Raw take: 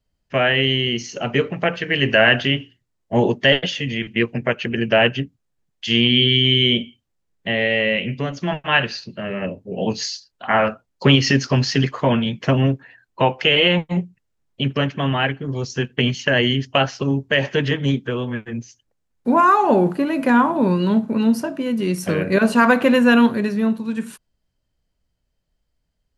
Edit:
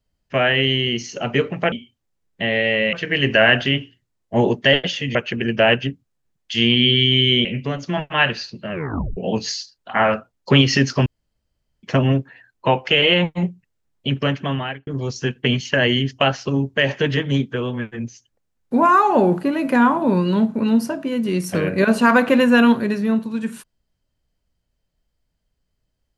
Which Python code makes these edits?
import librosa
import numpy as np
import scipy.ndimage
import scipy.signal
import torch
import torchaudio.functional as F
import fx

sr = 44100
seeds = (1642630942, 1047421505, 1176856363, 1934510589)

y = fx.edit(x, sr, fx.cut(start_s=3.94, length_s=0.54),
    fx.move(start_s=6.78, length_s=1.21, to_s=1.72),
    fx.tape_stop(start_s=9.26, length_s=0.45),
    fx.room_tone_fill(start_s=11.6, length_s=0.77),
    fx.fade_out_span(start_s=14.96, length_s=0.45), tone=tone)